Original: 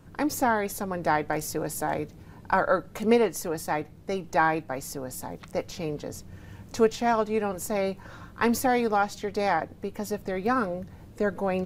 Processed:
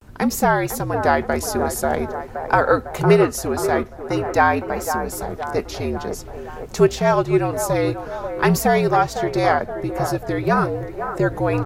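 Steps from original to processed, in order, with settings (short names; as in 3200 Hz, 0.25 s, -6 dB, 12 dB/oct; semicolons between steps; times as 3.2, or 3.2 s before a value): band-limited delay 0.521 s, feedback 57%, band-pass 810 Hz, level -7.5 dB; frequency shift -66 Hz; vibrato 0.48 Hz 64 cents; gain +7 dB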